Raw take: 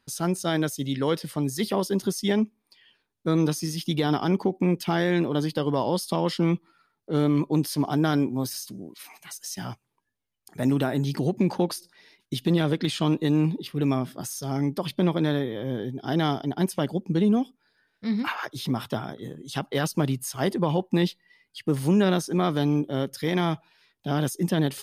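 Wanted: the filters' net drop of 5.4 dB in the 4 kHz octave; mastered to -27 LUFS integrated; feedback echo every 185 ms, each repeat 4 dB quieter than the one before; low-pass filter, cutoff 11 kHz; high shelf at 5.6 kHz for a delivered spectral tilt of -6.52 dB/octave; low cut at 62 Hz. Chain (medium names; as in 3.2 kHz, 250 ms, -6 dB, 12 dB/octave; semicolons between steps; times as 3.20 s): high-pass 62 Hz; low-pass 11 kHz; peaking EQ 4 kHz -4.5 dB; treble shelf 5.6 kHz -6.5 dB; feedback delay 185 ms, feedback 63%, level -4 dB; trim -2.5 dB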